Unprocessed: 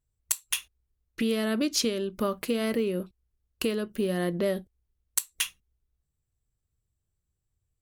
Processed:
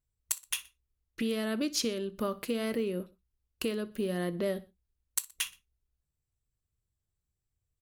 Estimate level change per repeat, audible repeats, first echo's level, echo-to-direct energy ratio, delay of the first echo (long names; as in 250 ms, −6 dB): −6.0 dB, 2, −20.5 dB, −19.5 dB, 61 ms